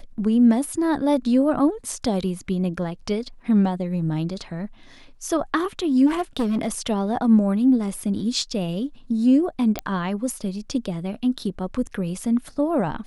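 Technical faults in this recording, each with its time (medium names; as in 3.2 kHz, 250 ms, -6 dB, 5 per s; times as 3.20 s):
6.06–6.68 s: clipped -18.5 dBFS
9.79 s: pop -9 dBFS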